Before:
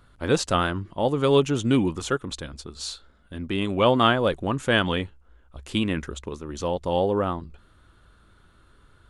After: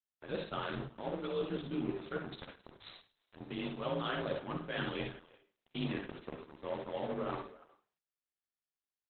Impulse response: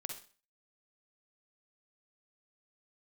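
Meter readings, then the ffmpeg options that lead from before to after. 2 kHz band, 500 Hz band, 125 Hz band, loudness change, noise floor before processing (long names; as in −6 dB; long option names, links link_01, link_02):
−14.5 dB, −15.5 dB, −16.0 dB, −15.5 dB, −57 dBFS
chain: -filter_complex "[0:a]afreqshift=35,acrossover=split=180[link_01][link_02];[link_02]acrusher=bits=7:mix=0:aa=0.000001[link_03];[link_01][link_03]amix=inputs=2:normalize=0,highshelf=frequency=8800:gain=4.5,asplit=2[link_04][link_05];[link_05]adelay=13,volume=-7dB[link_06];[link_04][link_06]amix=inputs=2:normalize=0,bandreject=frequency=52.72:width_type=h:width=4,bandreject=frequency=105.44:width_type=h:width=4,bandreject=frequency=158.16:width_type=h:width=4,bandreject=frequency=210.88:width_type=h:width=4,bandreject=frequency=263.6:width_type=h:width=4,bandreject=frequency=316.32:width_type=h:width=4,bandreject=frequency=369.04:width_type=h:width=4,bandreject=frequency=421.76:width_type=h:width=4,bandreject=frequency=474.48:width_type=h:width=4,bandreject=frequency=527.2:width_type=h:width=4,bandreject=frequency=579.92:width_type=h:width=4,bandreject=frequency=632.64:width_type=h:width=4,bandreject=frequency=685.36:width_type=h:width=4,aeval=exprs='sgn(val(0))*max(abs(val(0))-0.0282,0)':channel_layout=same,asplit=2[link_07][link_08];[link_08]adelay=330,highpass=300,lowpass=3400,asoftclip=type=hard:threshold=-13dB,volume=-28dB[link_09];[link_07][link_09]amix=inputs=2:normalize=0,areverse,acompressor=threshold=-33dB:ratio=5,areverse[link_10];[1:a]atrim=start_sample=2205,afade=type=out:start_time=0.44:duration=0.01,atrim=end_sample=19845[link_11];[link_10][link_11]afir=irnorm=-1:irlink=0,volume=1.5dB" -ar 48000 -c:a libopus -b:a 8k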